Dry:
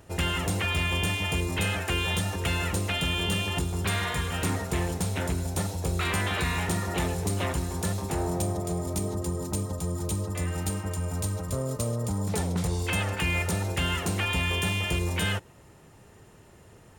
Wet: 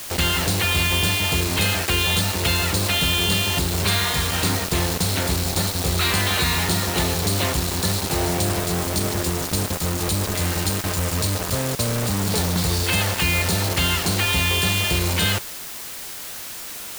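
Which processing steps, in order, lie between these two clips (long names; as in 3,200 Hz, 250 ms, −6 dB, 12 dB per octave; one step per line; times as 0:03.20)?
parametric band 4,300 Hz +13 dB 0.51 octaves
bit reduction 5 bits
background noise white −39 dBFS
level +5 dB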